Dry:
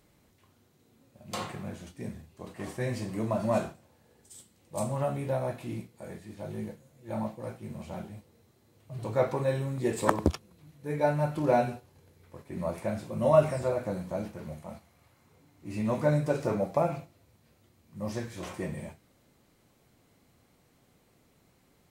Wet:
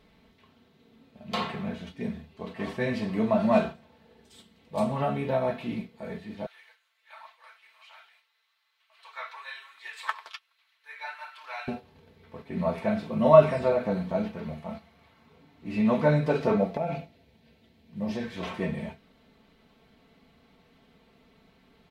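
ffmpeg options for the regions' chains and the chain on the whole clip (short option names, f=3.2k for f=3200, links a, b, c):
-filter_complex "[0:a]asettb=1/sr,asplit=3[a][b][c];[a]atrim=end=6.464[d];[b]atrim=start=6.46:end=11.68,asetpts=PTS-STARTPTS,afade=t=in:d=0.004:c=qsin,afade=t=out:st=5.216:d=0.004:c=qsin,highpass=f=1.2k:w=0.5412,highpass=f=1.2k:w=1.3066,flanger=delay=3.8:depth=7.3:regen=-38:speed=1.2:shape=triangular[e];[c]atrim=start=11.676[f];[d][e]acrossfade=d=0.004:c1=hsin:c2=qsin[g];[g][f]acrossfade=d=0.004:c1=qsin:c2=hsin,asettb=1/sr,asplit=3[h][i][j];[h]atrim=end=16.744[k];[i]atrim=start=16.74:end=18.24,asetpts=PTS-STARTPTS,afade=t=in:d=0.004:c=qsin,afade=t=out:st=1.496:d=0.004:c=qsin,equalizer=f=1.2k:t=o:w=0.51:g=-10.5,acompressor=threshold=-29dB:ratio=10:attack=3.2:release=140:knee=1:detection=peak[l];[j]atrim=start=18.236[m];[k][l]acrossfade=d=0.004:c1=hsin:c2=qsin[n];[n][m]acrossfade=d=0.004:c1=qsin:c2=hsin,highshelf=f=5.3k:t=q:w=1.5:g=-13.5,aecho=1:1:4.5:0.64,volume=3.5dB"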